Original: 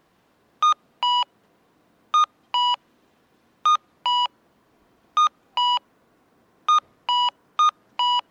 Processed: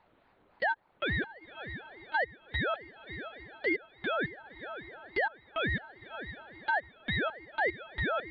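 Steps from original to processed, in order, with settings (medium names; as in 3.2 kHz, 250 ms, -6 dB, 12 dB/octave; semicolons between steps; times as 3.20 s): LPC vocoder at 8 kHz pitch kept; distance through air 74 m; echo that smears into a reverb 566 ms, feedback 47%, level -16 dB; compression 1.5:1, threshold -39 dBFS, peak gain reduction 8.5 dB; ring modulator with a swept carrier 610 Hz, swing 50%, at 3.5 Hz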